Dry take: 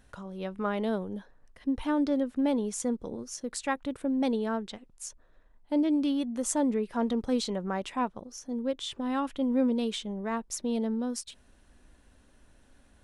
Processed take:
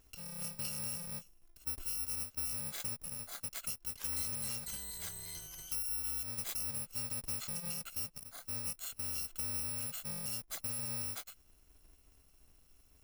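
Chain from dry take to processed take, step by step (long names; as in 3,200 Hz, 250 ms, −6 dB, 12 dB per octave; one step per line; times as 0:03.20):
samples in bit-reversed order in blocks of 128 samples
downward compressor, threshold −31 dBFS, peak gain reduction 10 dB
0:03.47–0:05.74: delay with pitch and tempo change per echo 428 ms, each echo −5 semitones, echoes 2, each echo −6 dB
level −5 dB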